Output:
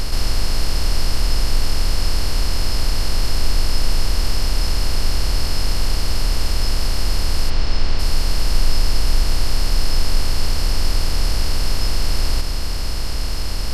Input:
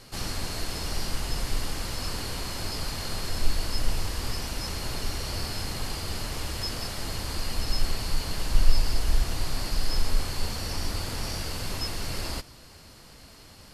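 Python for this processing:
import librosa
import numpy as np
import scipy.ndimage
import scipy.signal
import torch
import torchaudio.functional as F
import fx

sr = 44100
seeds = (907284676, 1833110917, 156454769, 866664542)

y = fx.bin_compress(x, sr, power=0.2)
y = fx.lowpass(y, sr, hz=4700.0, slope=12, at=(7.49, 7.98), fade=0.02)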